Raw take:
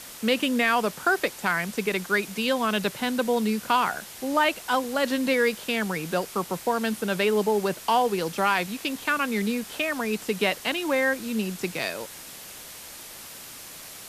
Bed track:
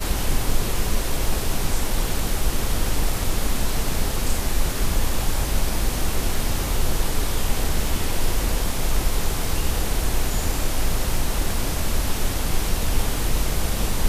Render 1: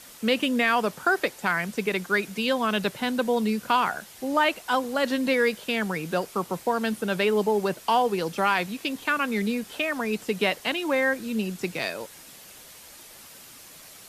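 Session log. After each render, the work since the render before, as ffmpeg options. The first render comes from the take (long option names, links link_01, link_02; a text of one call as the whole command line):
ffmpeg -i in.wav -af "afftdn=noise_reduction=6:noise_floor=-42" out.wav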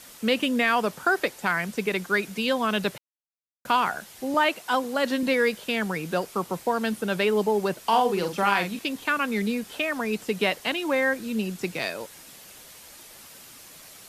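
ffmpeg -i in.wav -filter_complex "[0:a]asettb=1/sr,asplit=3[link_01][link_02][link_03];[link_01]atrim=end=4.344[link_04];[link_02]atrim=start=4.34:end=5.23,asetpts=PTS-STARTPTS,afade=type=in:duration=0.004:curve=qsin,afade=type=out:start_time=0.886:duration=0.004:curve=qsin,highpass=frequency=110:width=0.5412,highpass=frequency=110:width=1.3066[link_05];[link_03]atrim=start=5.226[link_06];[link_04][link_05]acrossfade=duration=0.004:curve1=hsin:curve2=qsin[link_07];[link_07][link_06]acrossfade=duration=0.004:curve1=qsin:curve2=hsin,asettb=1/sr,asplit=3[link_08][link_09][link_10];[link_08]atrim=end=7.824[link_11];[link_09]atrim=start=7.82:end=8.79,asetpts=PTS-STARTPTS,afade=type=in:duration=0.004:curve=qsin,afade=type=out:start_time=0.966:duration=0.004:curve=qsin,asplit=2[link_12][link_13];[link_13]adelay=45,volume=-6.5dB[link_14];[link_12][link_14]amix=inputs=2:normalize=0,atrim=end_sample=42777[link_15];[link_10]atrim=start=8.786[link_16];[link_11][link_15]acrossfade=duration=0.004:curve1=hsin:curve2=qsin[link_17];[link_17][link_16]acrossfade=duration=0.004:curve1=qsin:curve2=hsin,asplit=3[link_18][link_19][link_20];[link_18]atrim=end=2.98,asetpts=PTS-STARTPTS,afade=type=out:start_time=2.976:duration=0.004:curve=hsin[link_21];[link_19]atrim=start=2.98:end=3.65,asetpts=PTS-STARTPTS,volume=0[link_22];[link_20]atrim=start=3.65,asetpts=PTS-STARTPTS,afade=type=in:duration=0.004:curve=hsin[link_23];[link_21][link_22][link_23]concat=n=3:v=0:a=1" out.wav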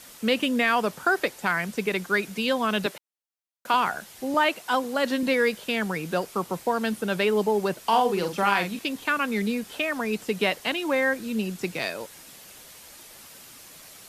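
ffmpeg -i in.wav -filter_complex "[0:a]asettb=1/sr,asplit=3[link_01][link_02][link_03];[link_01]atrim=end=2.864[link_04];[link_02]atrim=start=2.86:end=3.74,asetpts=PTS-STARTPTS,afade=type=in:duration=0.004:curve=qsin,afade=type=out:start_time=0.876:duration=0.004:curve=qsin,highpass=280[link_05];[link_03]atrim=start=3.736[link_06];[link_04][link_05]acrossfade=duration=0.004:curve1=hsin:curve2=qsin[link_07];[link_07][link_06]acrossfade=duration=0.004:curve1=qsin:curve2=hsin" out.wav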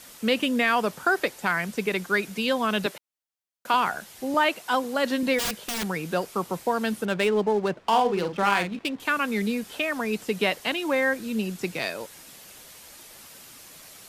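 ffmpeg -i in.wav -filter_complex "[0:a]asplit=3[link_01][link_02][link_03];[link_01]afade=type=out:start_time=5.38:duration=0.02[link_04];[link_02]aeval=exprs='(mod(13.3*val(0)+1,2)-1)/13.3':channel_layout=same,afade=type=in:start_time=5.38:duration=0.02,afade=type=out:start_time=5.84:duration=0.02[link_05];[link_03]afade=type=in:start_time=5.84:duration=0.02[link_06];[link_04][link_05][link_06]amix=inputs=3:normalize=0,asettb=1/sr,asplit=3[link_07][link_08][link_09];[link_07]atrim=end=7.054[link_10];[link_08]atrim=start=7.05:end=9,asetpts=PTS-STARTPTS,afade=type=in:duration=0.004:curve=qsin,afade=type=out:start_time=1.946:duration=0.004:curve=qsin,adynamicsmooth=sensitivity=7:basefreq=1400[link_11];[link_09]atrim=start=8.996[link_12];[link_10][link_11]acrossfade=duration=0.004:curve1=hsin:curve2=qsin[link_13];[link_13][link_12]acrossfade=duration=0.004:curve1=qsin:curve2=hsin" out.wav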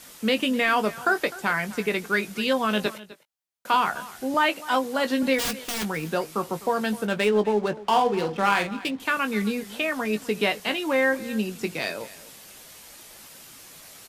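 ffmpeg -i in.wav -filter_complex "[0:a]asplit=2[link_01][link_02];[link_02]adelay=19,volume=-9dB[link_03];[link_01][link_03]amix=inputs=2:normalize=0,aecho=1:1:254:0.119" out.wav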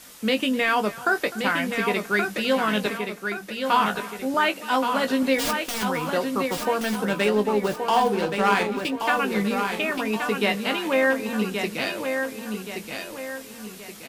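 ffmpeg -i in.wav -filter_complex "[0:a]asplit=2[link_01][link_02];[link_02]adelay=15,volume=-13dB[link_03];[link_01][link_03]amix=inputs=2:normalize=0,aecho=1:1:1125|2250|3375|4500|5625:0.501|0.21|0.0884|0.0371|0.0156" out.wav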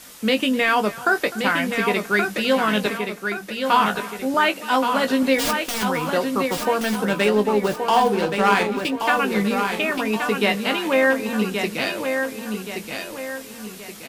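ffmpeg -i in.wav -af "volume=3dB" out.wav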